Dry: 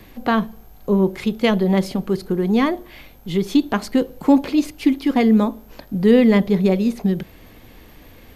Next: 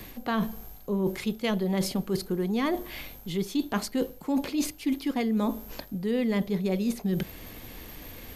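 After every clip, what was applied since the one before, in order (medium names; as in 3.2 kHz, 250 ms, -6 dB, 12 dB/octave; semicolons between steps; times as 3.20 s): treble shelf 4.5 kHz +9 dB; reverse; compression 6:1, threshold -25 dBFS, peak gain reduction 16 dB; reverse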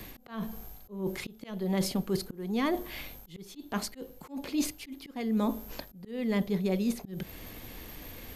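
slow attack 280 ms; trim -1.5 dB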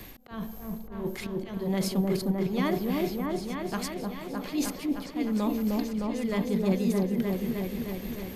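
delay with an opening low-pass 307 ms, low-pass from 750 Hz, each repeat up 1 oct, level 0 dB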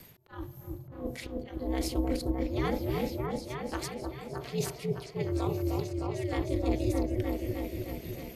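ring modulator 130 Hz; spectral noise reduction 7 dB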